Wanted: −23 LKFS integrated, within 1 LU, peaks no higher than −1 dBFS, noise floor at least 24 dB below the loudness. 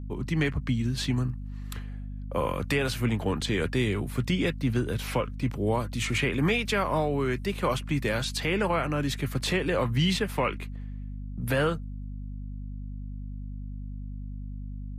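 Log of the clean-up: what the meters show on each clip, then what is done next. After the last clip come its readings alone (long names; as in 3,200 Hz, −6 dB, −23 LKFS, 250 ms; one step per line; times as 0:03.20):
mains hum 50 Hz; hum harmonics up to 250 Hz; level of the hum −34 dBFS; integrated loudness −28.0 LKFS; sample peak −14.0 dBFS; target loudness −23.0 LKFS
→ hum removal 50 Hz, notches 5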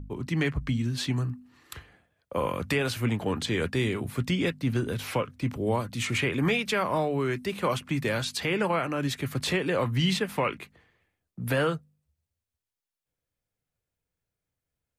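mains hum none found; integrated loudness −28.5 LKFS; sample peak −14.5 dBFS; target loudness −23.0 LKFS
→ level +5.5 dB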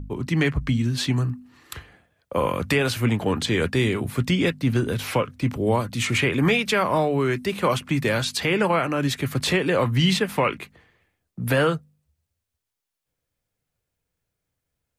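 integrated loudness −23.0 LKFS; sample peak −9.0 dBFS; background noise floor −82 dBFS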